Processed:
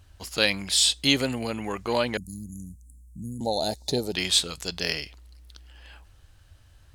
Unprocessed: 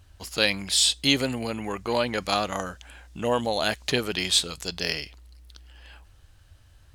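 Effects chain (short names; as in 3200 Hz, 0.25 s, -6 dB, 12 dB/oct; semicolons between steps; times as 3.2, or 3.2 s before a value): 2.17–3.41 inverse Chebyshev band-stop 640–3300 Hz, stop band 60 dB; 2.67–4.15 spectral gain 930–3500 Hz -18 dB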